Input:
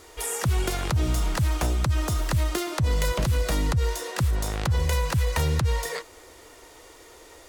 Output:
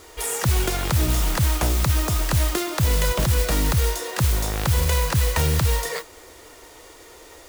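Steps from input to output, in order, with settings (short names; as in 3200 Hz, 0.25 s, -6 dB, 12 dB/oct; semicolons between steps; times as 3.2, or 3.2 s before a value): modulation noise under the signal 11 dB; gain +3 dB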